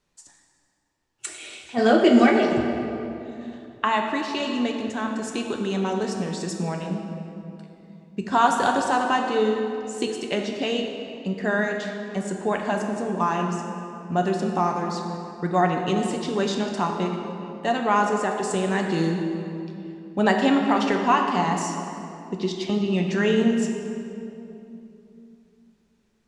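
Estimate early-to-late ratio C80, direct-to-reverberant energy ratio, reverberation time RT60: 4.5 dB, 2.0 dB, 2.9 s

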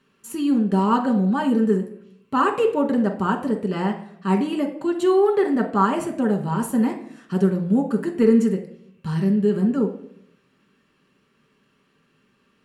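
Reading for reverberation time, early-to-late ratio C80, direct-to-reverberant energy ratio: 0.65 s, 13.5 dB, 2.5 dB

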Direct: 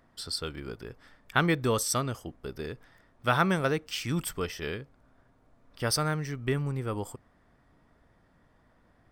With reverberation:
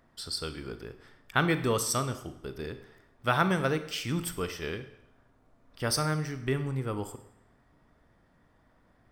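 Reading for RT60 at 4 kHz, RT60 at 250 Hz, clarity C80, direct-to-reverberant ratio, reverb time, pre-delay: 0.75 s, 0.80 s, 14.5 dB, 10.0 dB, 0.80 s, 37 ms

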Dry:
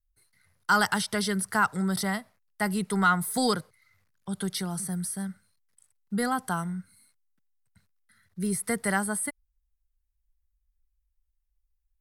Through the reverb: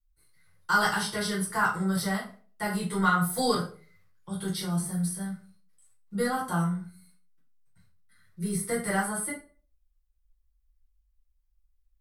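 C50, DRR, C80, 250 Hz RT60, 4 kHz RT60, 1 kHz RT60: 7.0 dB, -7.5 dB, 12.5 dB, 0.45 s, 0.30 s, 0.35 s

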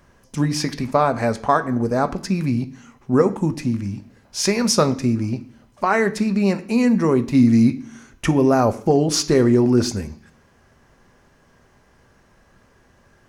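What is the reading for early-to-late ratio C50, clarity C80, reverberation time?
16.5 dB, 20.0 dB, 0.55 s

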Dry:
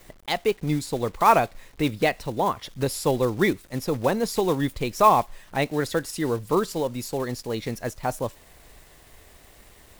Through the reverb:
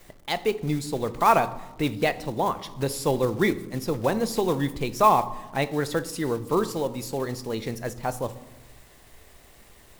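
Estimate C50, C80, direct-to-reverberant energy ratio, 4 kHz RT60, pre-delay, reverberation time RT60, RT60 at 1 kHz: 16.0 dB, 18.0 dB, 12.0 dB, 0.55 s, 5 ms, 1.1 s, 1.0 s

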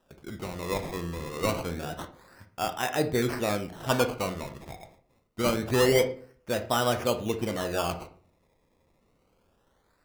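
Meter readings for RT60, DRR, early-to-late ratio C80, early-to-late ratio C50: 0.50 s, 7.5 dB, 17.0 dB, 13.0 dB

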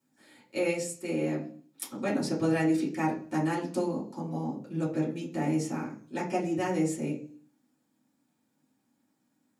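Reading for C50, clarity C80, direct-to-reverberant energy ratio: 8.5 dB, 13.5 dB, -6.5 dB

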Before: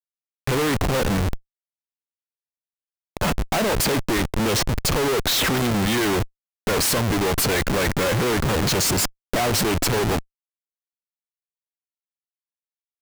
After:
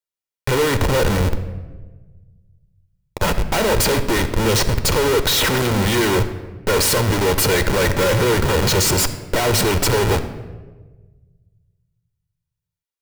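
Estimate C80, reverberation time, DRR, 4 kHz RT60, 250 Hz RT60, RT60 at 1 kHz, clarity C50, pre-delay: 13.0 dB, 1.3 s, 10.0 dB, 0.80 s, 1.7 s, 1.1 s, 11.5 dB, 9 ms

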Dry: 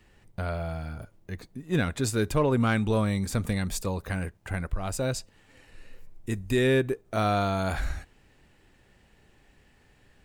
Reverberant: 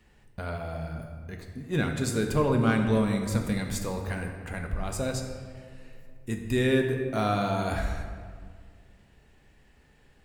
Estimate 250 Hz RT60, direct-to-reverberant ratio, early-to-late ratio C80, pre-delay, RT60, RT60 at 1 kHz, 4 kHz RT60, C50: 2.1 s, 3.0 dB, 6.5 dB, 3 ms, 1.8 s, 1.7 s, 1.1 s, 5.5 dB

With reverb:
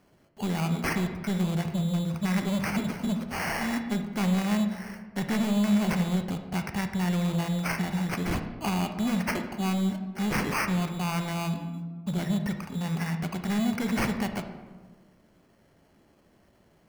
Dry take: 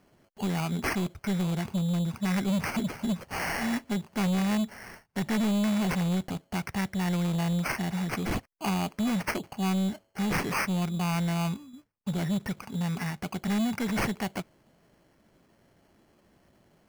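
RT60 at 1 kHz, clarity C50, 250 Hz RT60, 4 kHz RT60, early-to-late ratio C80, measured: 1.3 s, 8.0 dB, 1.7 s, 0.70 s, 10.0 dB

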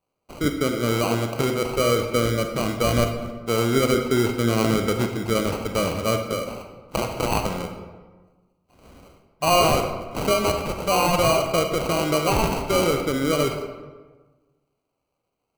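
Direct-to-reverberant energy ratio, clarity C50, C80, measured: 4.5 dB, 6.0 dB, 8.0 dB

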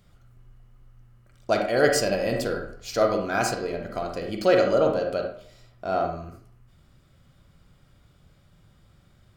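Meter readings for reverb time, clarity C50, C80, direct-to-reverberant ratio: 0.55 s, 4.5 dB, 9.0 dB, 2.5 dB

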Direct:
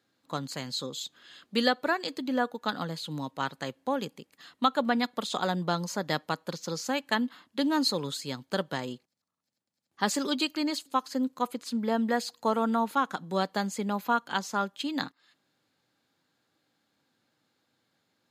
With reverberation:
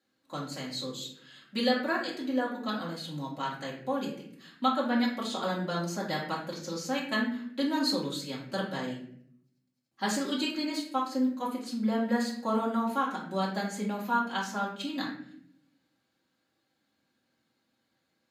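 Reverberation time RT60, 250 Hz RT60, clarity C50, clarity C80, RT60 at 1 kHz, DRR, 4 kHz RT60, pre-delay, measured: 0.65 s, 1.0 s, 4.5 dB, 8.0 dB, 0.55 s, -6.0 dB, 0.45 s, 3 ms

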